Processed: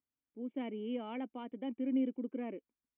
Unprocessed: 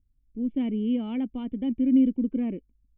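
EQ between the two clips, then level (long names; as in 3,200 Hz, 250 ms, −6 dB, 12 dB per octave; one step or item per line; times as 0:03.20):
band-pass filter 570–2,100 Hz
+1.0 dB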